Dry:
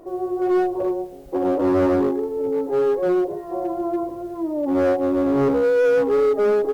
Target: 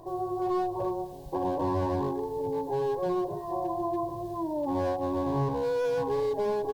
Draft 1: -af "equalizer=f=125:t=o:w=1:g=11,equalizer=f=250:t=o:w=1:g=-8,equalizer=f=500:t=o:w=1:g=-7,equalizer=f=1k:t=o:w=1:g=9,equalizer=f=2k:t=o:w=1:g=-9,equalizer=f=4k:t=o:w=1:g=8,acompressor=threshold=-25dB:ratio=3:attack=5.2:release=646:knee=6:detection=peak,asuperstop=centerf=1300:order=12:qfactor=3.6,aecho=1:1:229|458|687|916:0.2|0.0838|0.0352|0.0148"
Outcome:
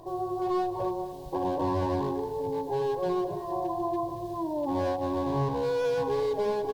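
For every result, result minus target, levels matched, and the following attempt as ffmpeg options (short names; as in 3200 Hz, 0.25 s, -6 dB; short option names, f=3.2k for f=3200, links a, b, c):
echo-to-direct +10.5 dB; 4000 Hz band +3.5 dB
-af "equalizer=f=125:t=o:w=1:g=11,equalizer=f=250:t=o:w=1:g=-8,equalizer=f=500:t=o:w=1:g=-7,equalizer=f=1k:t=o:w=1:g=9,equalizer=f=2k:t=o:w=1:g=-9,equalizer=f=4k:t=o:w=1:g=8,acompressor=threshold=-25dB:ratio=3:attack=5.2:release=646:knee=6:detection=peak,asuperstop=centerf=1300:order=12:qfactor=3.6,aecho=1:1:229|458|687:0.0596|0.025|0.0105"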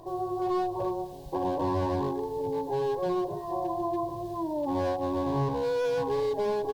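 4000 Hz band +3.5 dB
-af "equalizer=f=125:t=o:w=1:g=11,equalizer=f=250:t=o:w=1:g=-8,equalizer=f=500:t=o:w=1:g=-7,equalizer=f=1k:t=o:w=1:g=9,equalizer=f=2k:t=o:w=1:g=-9,equalizer=f=4k:t=o:w=1:g=8,acompressor=threshold=-25dB:ratio=3:attack=5.2:release=646:knee=6:detection=peak,asuperstop=centerf=1300:order=12:qfactor=3.6,equalizer=f=3.6k:w=0.78:g=-4,aecho=1:1:229|458|687:0.0596|0.025|0.0105"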